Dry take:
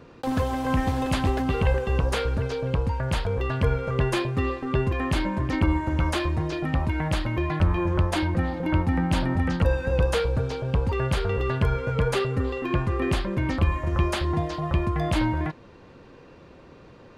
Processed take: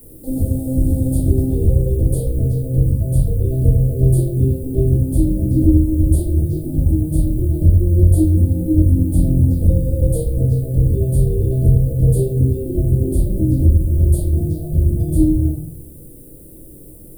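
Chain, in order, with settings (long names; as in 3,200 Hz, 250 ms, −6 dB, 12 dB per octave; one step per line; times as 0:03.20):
inverse Chebyshev band-stop filter 1,100–2,200 Hz, stop band 50 dB
parametric band 1,400 Hz −10.5 dB 1.9 octaves
rectangular room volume 55 cubic metres, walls mixed, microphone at 2.7 metres
in parallel at −7 dB: bit-depth reduction 6 bits, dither triangular
on the sum: drawn EQ curve 330 Hz 0 dB, 2,000 Hz −19 dB, 6,200 Hz −17 dB, 9,100 Hz +8 dB
level −8 dB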